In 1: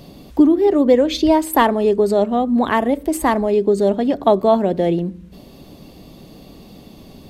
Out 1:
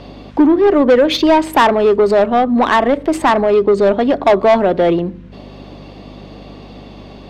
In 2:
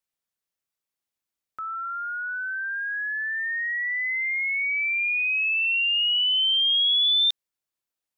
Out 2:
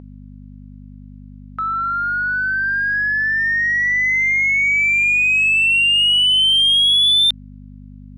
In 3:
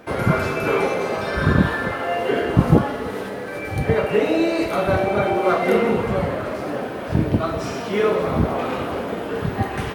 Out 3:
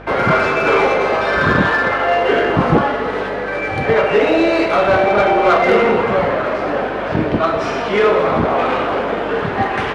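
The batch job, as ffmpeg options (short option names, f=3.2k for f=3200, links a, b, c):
-filter_complex "[0:a]adynamicsmooth=sensitivity=2.5:basefreq=4.6k,aeval=exprs='val(0)+0.02*(sin(2*PI*50*n/s)+sin(2*PI*2*50*n/s)/2+sin(2*PI*3*50*n/s)/3+sin(2*PI*4*50*n/s)/4+sin(2*PI*5*50*n/s)/5)':c=same,asplit=2[a][b];[b]highpass=f=720:p=1,volume=19dB,asoftclip=type=tanh:threshold=-0.5dB[c];[a][c]amix=inputs=2:normalize=0,lowpass=f=3.1k:p=1,volume=-6dB,volume=-1dB"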